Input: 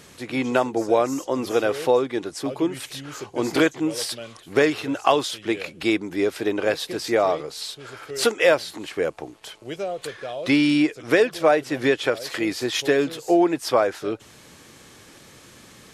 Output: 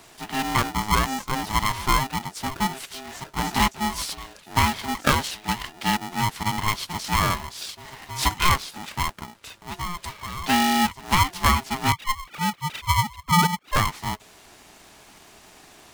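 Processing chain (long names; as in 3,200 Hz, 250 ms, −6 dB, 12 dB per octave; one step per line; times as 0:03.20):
0:11.92–0:13.76: three sine waves on the formant tracks
ring modulator with a square carrier 530 Hz
level −2 dB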